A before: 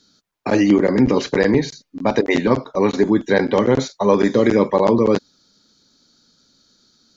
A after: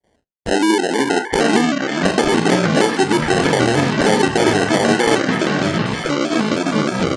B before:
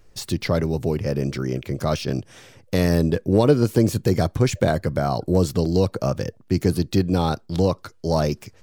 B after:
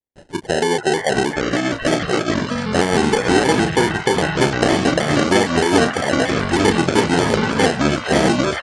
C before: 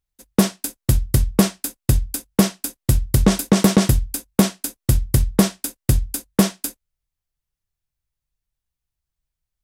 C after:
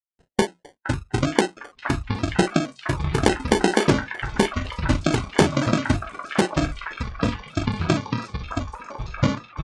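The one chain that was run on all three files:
auto-wah 390–4000 Hz, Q 2.7, down, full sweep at -18.5 dBFS; gate with hold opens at -53 dBFS; compression 6:1, threshold -26 dBFS; touch-sensitive flanger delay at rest 6.4 ms, full sweep at -28.5 dBFS; doubling 33 ms -8 dB; sample-and-hold 36×; on a send: repeats whose band climbs or falls 466 ms, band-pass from 1.4 kHz, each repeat 0.7 oct, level -1 dB; on the sum: resampled via 22.05 kHz; ever faster or slower copies 704 ms, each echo -5 st, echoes 3; spectral noise reduction 10 dB; vibrato with a chosen wave square 3.2 Hz, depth 100 cents; peak normalisation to -1.5 dBFS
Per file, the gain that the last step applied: +12.5 dB, +13.0 dB, +12.5 dB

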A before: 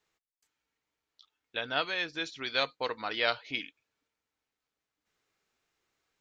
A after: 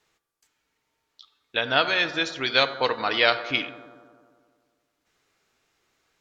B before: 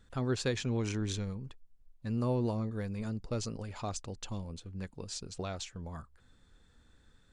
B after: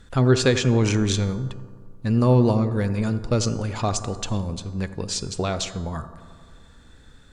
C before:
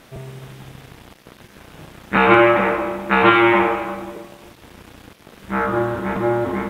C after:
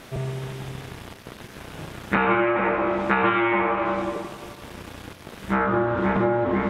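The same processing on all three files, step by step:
low-pass that closes with the level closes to 3 kHz, closed at -17.5 dBFS; compression 10:1, threshold -21 dBFS; feedback comb 130 Hz, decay 0.85 s, harmonics odd, mix 60%; on a send: bucket-brigade echo 88 ms, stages 1024, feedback 73%, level -14 dB; on the sum: normalise loudness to -23 LUFS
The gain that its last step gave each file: +17.0 dB, +21.0 dB, +11.0 dB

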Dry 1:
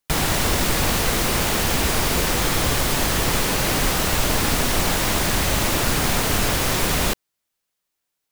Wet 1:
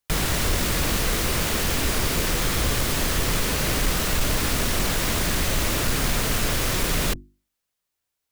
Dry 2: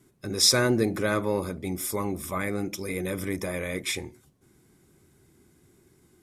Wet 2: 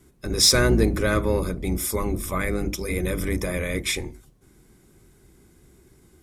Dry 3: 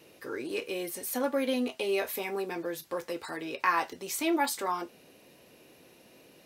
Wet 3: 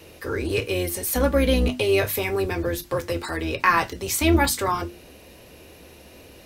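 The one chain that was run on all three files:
octave divider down 2 oct, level +1 dB; hum notches 50/100/150/200/250/300/350 Hz; dynamic bell 820 Hz, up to -5 dB, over -45 dBFS, Q 2.5; saturation -10 dBFS; normalise loudness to -23 LUFS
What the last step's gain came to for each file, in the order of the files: -2.0 dB, +4.0 dB, +9.5 dB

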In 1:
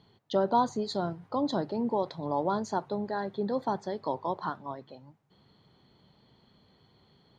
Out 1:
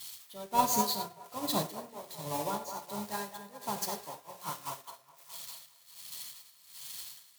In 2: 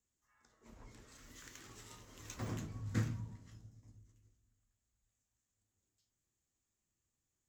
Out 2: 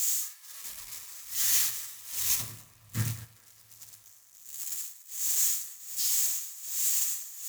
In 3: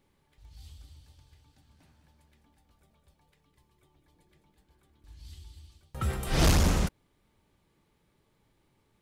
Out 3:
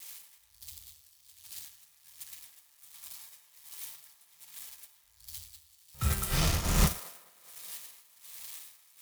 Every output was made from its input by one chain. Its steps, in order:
zero-crossing glitches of -25.5 dBFS; peaking EQ 370 Hz -8.5 dB 2.3 oct; band-stop 1.5 kHz, Q 11; sine folder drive 4 dB, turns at -13.5 dBFS; tremolo 1.3 Hz, depth 61%; on a send: feedback echo behind a band-pass 207 ms, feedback 63%, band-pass 950 Hz, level -3.5 dB; on the sum: gated-style reverb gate 130 ms flat, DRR 3.5 dB; upward expansion 2.5:1, over -36 dBFS; peak normalisation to -12 dBFS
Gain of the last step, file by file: -1.0 dB, +1.0 dB, +0.5 dB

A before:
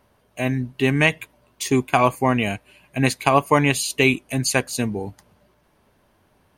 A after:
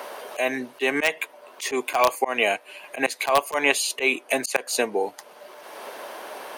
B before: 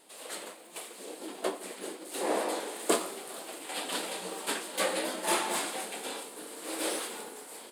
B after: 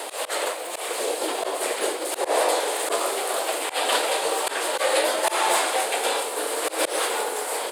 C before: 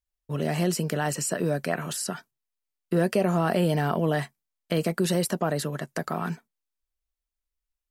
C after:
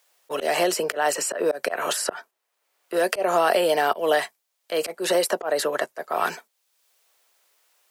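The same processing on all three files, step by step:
ladder high-pass 390 Hz, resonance 25%; treble shelf 3.7 kHz -2.5 dB; in parallel at -5 dB: integer overflow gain 10.5 dB; on the sum: slow attack 186 ms; three bands compressed up and down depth 70%; normalise loudness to -24 LUFS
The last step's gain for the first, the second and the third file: +8.0 dB, +16.0 dB, +10.5 dB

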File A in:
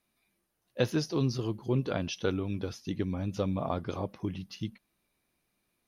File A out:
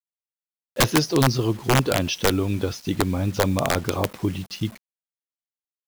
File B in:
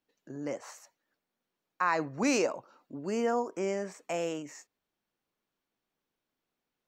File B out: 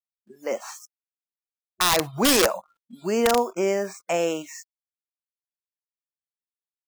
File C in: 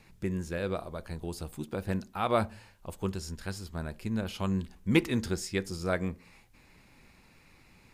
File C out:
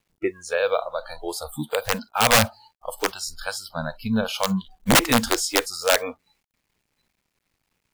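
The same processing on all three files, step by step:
bit crusher 9-bit; dynamic bell 190 Hz, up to -4 dB, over -43 dBFS, Q 2.3; integer overflow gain 21 dB; spectral noise reduction 29 dB; normalise loudness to -23 LUFS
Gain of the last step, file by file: +10.5 dB, +9.5 dB, +13.0 dB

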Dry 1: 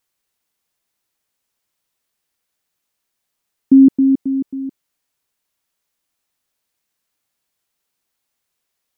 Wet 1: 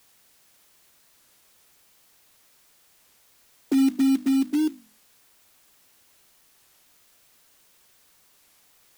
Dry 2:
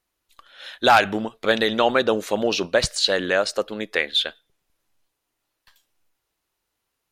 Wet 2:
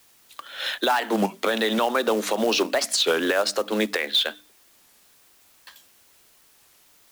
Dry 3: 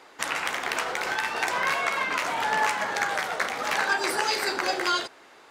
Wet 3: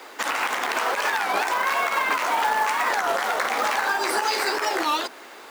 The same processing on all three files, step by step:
steep high-pass 200 Hz 96 dB/octave; hum notches 50/100/150/200/250/300 Hz; dynamic bell 970 Hz, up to +5 dB, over -35 dBFS, Q 1.5; short-mantissa float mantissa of 2-bit; compression 5:1, threshold -27 dBFS; peak limiter -22 dBFS; added noise white -68 dBFS; warped record 33 1/3 rpm, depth 250 cents; normalise loudness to -23 LUFS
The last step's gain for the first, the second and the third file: +7.5 dB, +10.5 dB, +9.0 dB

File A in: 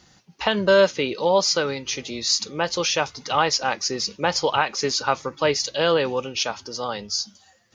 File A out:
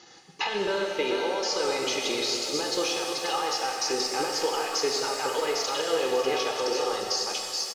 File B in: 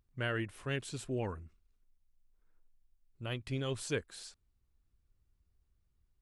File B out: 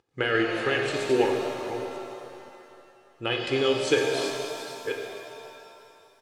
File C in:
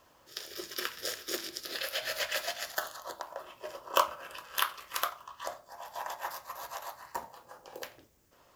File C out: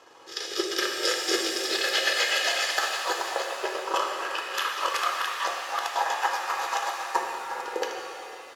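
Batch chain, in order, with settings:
chunks repeated in reverse 492 ms, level -11.5 dB; compression, threshold -24 dBFS; band-pass 250–6700 Hz; peak limiter -26 dBFS; transient shaper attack +4 dB, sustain -11 dB; comb 2.4 ms, depth 54%; pitch-shifted reverb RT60 2.6 s, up +7 st, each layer -8 dB, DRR 1 dB; normalise loudness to -27 LUFS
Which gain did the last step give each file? +3.5 dB, +10.5 dB, +9.5 dB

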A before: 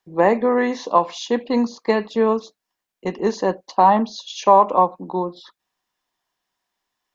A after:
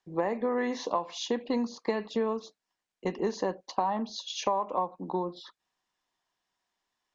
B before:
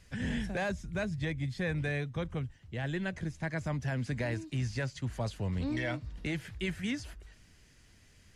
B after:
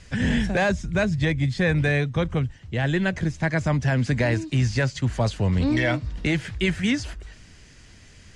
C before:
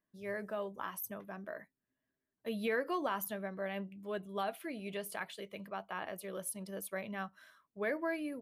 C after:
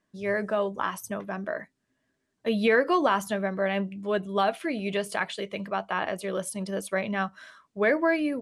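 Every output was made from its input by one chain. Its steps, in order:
low-pass 8.9 kHz 24 dB/octave; compression 6:1, threshold -22 dBFS; peak normalisation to -12 dBFS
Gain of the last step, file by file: -3.5 dB, +12.0 dB, +12.5 dB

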